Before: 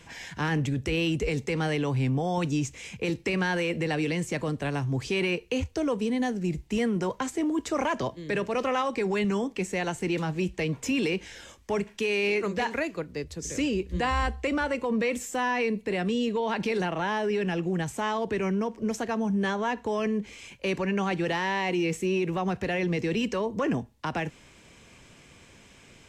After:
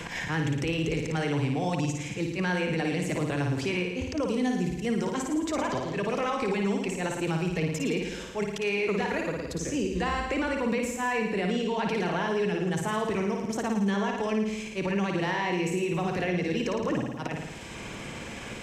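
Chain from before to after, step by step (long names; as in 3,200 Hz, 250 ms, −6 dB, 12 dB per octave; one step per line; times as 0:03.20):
volume swells 143 ms
brickwall limiter −22.5 dBFS, peak gain reduction 4.5 dB
tempo change 1.4×
on a send: flutter between parallel walls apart 9.5 metres, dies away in 0.8 s
on the sum: multiband upward and downward compressor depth 70%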